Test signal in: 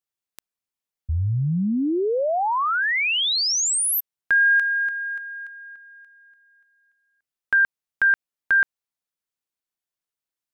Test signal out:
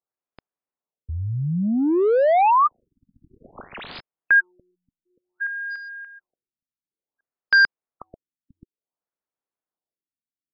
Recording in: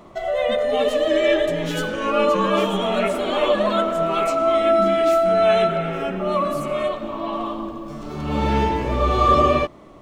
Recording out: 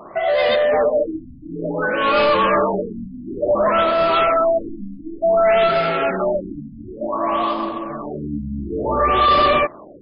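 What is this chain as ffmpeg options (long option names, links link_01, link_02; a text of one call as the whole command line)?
ffmpeg -i in.wav -filter_complex "[0:a]asplit=2[link_01][link_02];[link_02]highpass=frequency=720:poles=1,volume=20dB,asoftclip=type=tanh:threshold=-5dB[link_03];[link_01][link_03]amix=inputs=2:normalize=0,lowpass=frequency=7400:poles=1,volume=-6dB,adynamicsmooth=sensitivity=6.5:basefreq=890,afftfilt=real='re*lt(b*sr/1024,280*pow(5200/280,0.5+0.5*sin(2*PI*0.56*pts/sr)))':imag='im*lt(b*sr/1024,280*pow(5200/280,0.5+0.5*sin(2*PI*0.56*pts/sr)))':win_size=1024:overlap=0.75,volume=-3dB" out.wav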